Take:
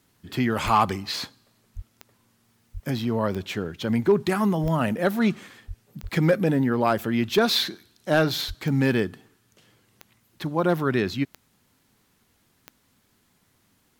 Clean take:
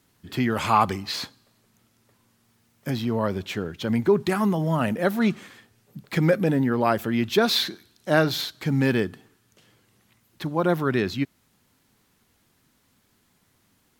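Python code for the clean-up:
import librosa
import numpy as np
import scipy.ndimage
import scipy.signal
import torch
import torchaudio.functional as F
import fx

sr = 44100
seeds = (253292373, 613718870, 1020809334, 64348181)

y = fx.fix_declip(x, sr, threshold_db=-10.5)
y = fx.fix_declick_ar(y, sr, threshold=10.0)
y = fx.fix_deplosive(y, sr, at_s=(0.64, 1.75, 2.73, 4.62, 5.67, 6.02, 8.47))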